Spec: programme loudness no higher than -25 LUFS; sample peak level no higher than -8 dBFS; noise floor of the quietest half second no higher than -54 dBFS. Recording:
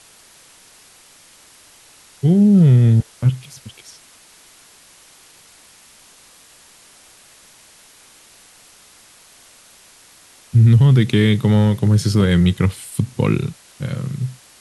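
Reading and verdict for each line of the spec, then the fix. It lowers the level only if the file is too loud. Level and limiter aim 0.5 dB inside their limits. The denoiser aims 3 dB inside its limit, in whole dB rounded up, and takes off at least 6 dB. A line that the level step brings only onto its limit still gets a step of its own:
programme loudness -16.0 LUFS: fail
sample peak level -4.5 dBFS: fail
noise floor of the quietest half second -48 dBFS: fail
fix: trim -9.5 dB

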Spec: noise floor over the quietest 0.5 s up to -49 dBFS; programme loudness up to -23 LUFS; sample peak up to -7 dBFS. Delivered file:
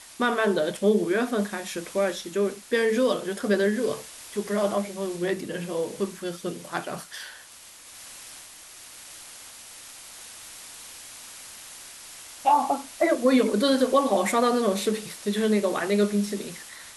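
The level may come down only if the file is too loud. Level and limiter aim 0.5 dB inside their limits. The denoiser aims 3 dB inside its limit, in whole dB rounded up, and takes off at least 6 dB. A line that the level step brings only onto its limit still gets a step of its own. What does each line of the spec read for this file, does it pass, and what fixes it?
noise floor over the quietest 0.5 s -48 dBFS: fail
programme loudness -25.5 LUFS: pass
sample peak -9.0 dBFS: pass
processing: noise reduction 6 dB, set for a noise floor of -48 dBFS

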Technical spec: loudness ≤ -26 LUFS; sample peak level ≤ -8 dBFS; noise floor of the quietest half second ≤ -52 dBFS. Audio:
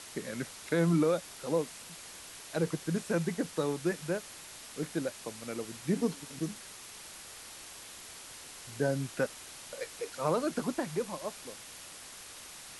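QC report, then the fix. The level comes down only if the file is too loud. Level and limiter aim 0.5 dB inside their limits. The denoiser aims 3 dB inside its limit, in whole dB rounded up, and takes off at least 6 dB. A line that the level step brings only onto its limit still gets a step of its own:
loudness -35.0 LUFS: pass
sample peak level -16.5 dBFS: pass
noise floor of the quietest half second -48 dBFS: fail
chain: noise reduction 7 dB, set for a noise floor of -48 dBFS

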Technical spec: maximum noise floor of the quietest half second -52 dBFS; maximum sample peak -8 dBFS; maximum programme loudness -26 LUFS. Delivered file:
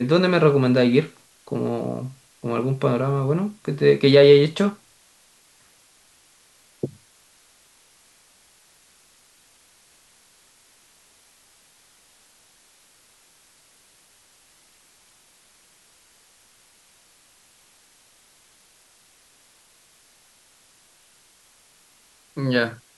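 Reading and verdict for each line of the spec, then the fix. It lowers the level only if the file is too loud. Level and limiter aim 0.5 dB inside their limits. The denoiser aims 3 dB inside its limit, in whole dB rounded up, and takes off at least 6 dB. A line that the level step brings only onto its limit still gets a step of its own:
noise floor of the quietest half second -57 dBFS: pass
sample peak -3.0 dBFS: fail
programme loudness -20.0 LUFS: fail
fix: trim -6.5 dB

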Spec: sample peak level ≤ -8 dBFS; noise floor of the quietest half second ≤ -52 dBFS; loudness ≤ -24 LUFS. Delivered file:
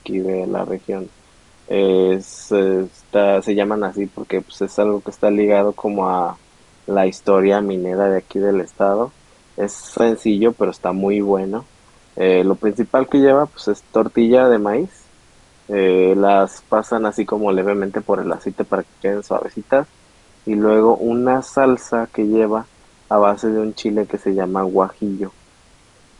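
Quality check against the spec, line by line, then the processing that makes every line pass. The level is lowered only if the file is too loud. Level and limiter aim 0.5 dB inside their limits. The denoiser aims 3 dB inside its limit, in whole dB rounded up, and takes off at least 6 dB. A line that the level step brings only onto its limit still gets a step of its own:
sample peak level -1.5 dBFS: fail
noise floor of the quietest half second -51 dBFS: fail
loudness -18.0 LUFS: fail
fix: trim -6.5 dB; peak limiter -8.5 dBFS

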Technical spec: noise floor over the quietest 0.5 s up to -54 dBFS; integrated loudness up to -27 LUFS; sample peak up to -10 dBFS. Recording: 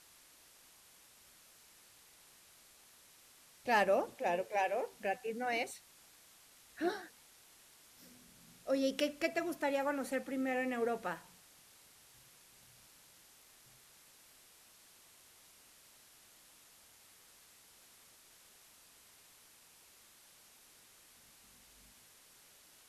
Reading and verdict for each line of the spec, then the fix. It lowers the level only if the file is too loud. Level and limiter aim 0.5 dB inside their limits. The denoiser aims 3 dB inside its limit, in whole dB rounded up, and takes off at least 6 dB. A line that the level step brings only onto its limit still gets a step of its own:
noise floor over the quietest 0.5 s -63 dBFS: pass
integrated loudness -36.0 LUFS: pass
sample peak -19.5 dBFS: pass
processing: none needed

